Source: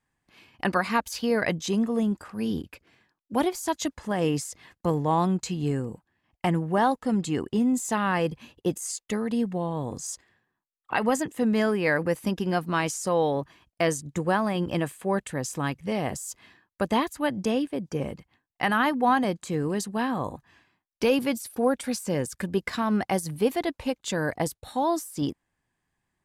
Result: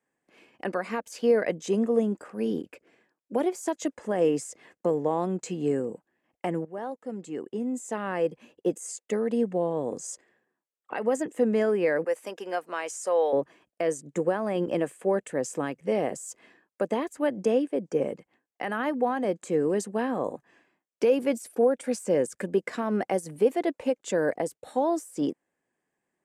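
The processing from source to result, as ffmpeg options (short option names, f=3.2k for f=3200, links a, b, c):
-filter_complex "[0:a]asettb=1/sr,asplit=3[a][b][c];[a]atrim=end=12.044[d];[b]atrim=start=12.04:end=13.33,asetpts=PTS-STARTPTS,afade=t=in:d=0.004:c=qsin,afade=t=out:st=1.286:d=0.004:c=qsin,highpass=640[e];[c]atrim=start=13.326[f];[d][e]acrossfade=d=0.004:c1=hsin:c2=qsin[g];[g][f]acrossfade=d=0.004:c1=qsin:c2=hsin,asplit=2[h][i];[h]atrim=end=6.65,asetpts=PTS-STARTPTS,afade=t=out:st=6.646:d=0.004:c=hsin:silence=0.149624[j];[i]atrim=start=6.65,asetpts=PTS-STARTPTS,afade=t=in:d=2.9:silence=0.149624[k];[j][k]concat=n=2:v=0:a=1,acrossover=split=180 4700:gain=0.0708 1 0.2[l][m][n];[l][m][n]amix=inputs=3:normalize=0,alimiter=limit=-17.5dB:level=0:latency=1:release=270,equalizer=f=500:t=o:w=1:g=8,equalizer=f=1k:t=o:w=1:g=-5,equalizer=f=4k:t=o:w=1:g=-10,equalizer=f=8k:t=o:w=1:g=12"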